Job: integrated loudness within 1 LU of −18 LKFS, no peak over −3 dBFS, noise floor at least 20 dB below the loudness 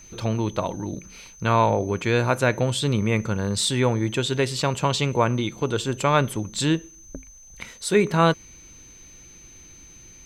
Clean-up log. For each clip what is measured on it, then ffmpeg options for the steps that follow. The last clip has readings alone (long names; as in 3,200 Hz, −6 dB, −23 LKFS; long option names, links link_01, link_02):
interfering tone 6,200 Hz; level of the tone −46 dBFS; integrated loudness −23.0 LKFS; sample peak −6.5 dBFS; target loudness −18.0 LKFS
→ -af "bandreject=frequency=6200:width=30"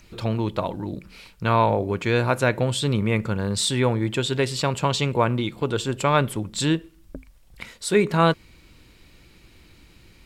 interfering tone none found; integrated loudness −23.0 LKFS; sample peak −6.5 dBFS; target loudness −18.0 LKFS
→ -af "volume=5dB,alimiter=limit=-3dB:level=0:latency=1"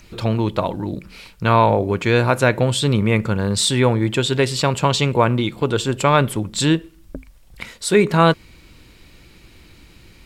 integrated loudness −18.5 LKFS; sample peak −3.0 dBFS; background noise floor −48 dBFS